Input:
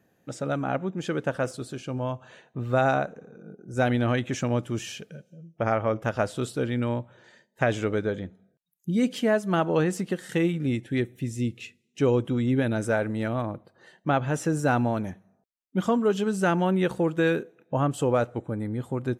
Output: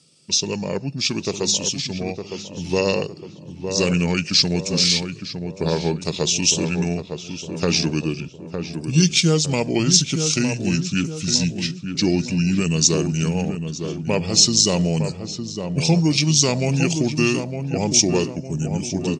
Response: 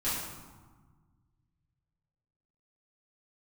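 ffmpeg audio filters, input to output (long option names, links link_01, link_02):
-filter_complex "[0:a]aexciter=amount=12.9:drive=7.3:freq=4000,asetrate=32097,aresample=44100,atempo=1.37395,highpass=140,equalizer=frequency=160:width_type=q:width=4:gain=9,equalizer=frequency=1100:width_type=q:width=4:gain=-10,equalizer=frequency=2400:width_type=q:width=4:gain=4,equalizer=frequency=4400:width_type=q:width=4:gain=-5,lowpass=frequency=6900:width=0.5412,lowpass=frequency=6900:width=1.3066,asplit=2[link_01][link_02];[link_02]adelay=909,lowpass=frequency=1400:poles=1,volume=-6.5dB,asplit=2[link_03][link_04];[link_04]adelay=909,lowpass=frequency=1400:poles=1,volume=0.47,asplit=2[link_05][link_06];[link_06]adelay=909,lowpass=frequency=1400:poles=1,volume=0.47,asplit=2[link_07][link_08];[link_08]adelay=909,lowpass=frequency=1400:poles=1,volume=0.47,asplit=2[link_09][link_10];[link_10]adelay=909,lowpass=frequency=1400:poles=1,volume=0.47,asplit=2[link_11][link_12];[link_12]adelay=909,lowpass=frequency=1400:poles=1,volume=0.47[link_13];[link_03][link_05][link_07][link_09][link_11][link_13]amix=inputs=6:normalize=0[link_14];[link_01][link_14]amix=inputs=2:normalize=0,volume=2.5dB"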